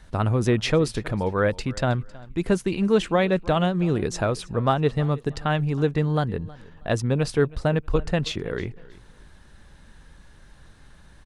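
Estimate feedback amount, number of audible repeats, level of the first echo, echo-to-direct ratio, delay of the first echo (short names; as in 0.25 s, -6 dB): 25%, 2, -21.5 dB, -21.0 dB, 0.319 s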